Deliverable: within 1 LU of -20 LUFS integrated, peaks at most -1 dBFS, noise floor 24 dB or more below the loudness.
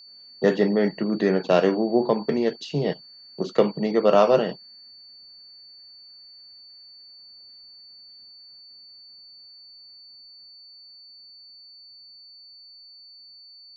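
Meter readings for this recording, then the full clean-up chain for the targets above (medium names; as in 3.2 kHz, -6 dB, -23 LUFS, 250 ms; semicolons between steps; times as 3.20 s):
steady tone 4.5 kHz; tone level -45 dBFS; loudness -22.5 LUFS; peak level -5.0 dBFS; loudness target -20.0 LUFS
-> band-stop 4.5 kHz, Q 30; trim +2.5 dB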